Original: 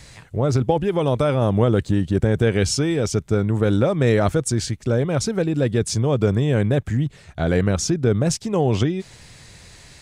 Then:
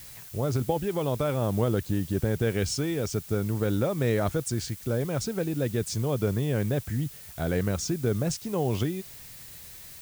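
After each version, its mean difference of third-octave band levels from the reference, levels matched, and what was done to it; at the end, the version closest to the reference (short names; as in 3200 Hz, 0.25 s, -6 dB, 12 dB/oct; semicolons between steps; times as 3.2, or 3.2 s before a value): 5.0 dB: added noise blue -38 dBFS; gain -8 dB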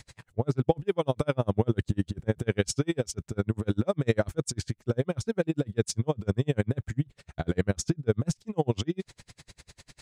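7.5 dB: dB-linear tremolo 10 Hz, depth 40 dB; gain -1.5 dB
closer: first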